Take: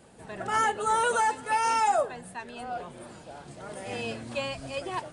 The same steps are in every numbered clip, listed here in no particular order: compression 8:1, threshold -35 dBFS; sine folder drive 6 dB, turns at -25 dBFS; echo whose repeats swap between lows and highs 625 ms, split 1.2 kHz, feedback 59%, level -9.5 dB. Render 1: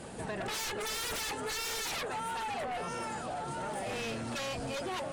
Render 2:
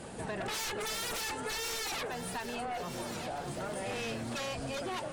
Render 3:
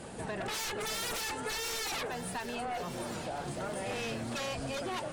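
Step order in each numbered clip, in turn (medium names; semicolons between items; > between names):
echo whose repeats swap between lows and highs > sine folder > compression; sine folder > echo whose repeats swap between lows and highs > compression; sine folder > compression > echo whose repeats swap between lows and highs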